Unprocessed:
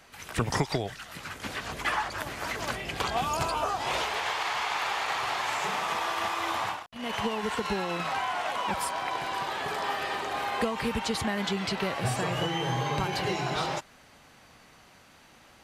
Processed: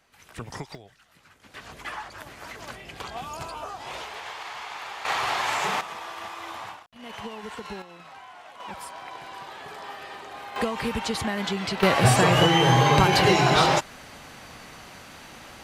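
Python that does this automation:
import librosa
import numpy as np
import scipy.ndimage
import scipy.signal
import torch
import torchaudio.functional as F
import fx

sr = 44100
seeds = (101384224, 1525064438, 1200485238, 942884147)

y = fx.gain(x, sr, db=fx.steps((0.0, -9.5), (0.75, -16.5), (1.54, -7.0), (5.05, 4.0), (5.81, -7.0), (7.82, -15.0), (8.6, -8.0), (10.56, 1.5), (11.83, 11.0)))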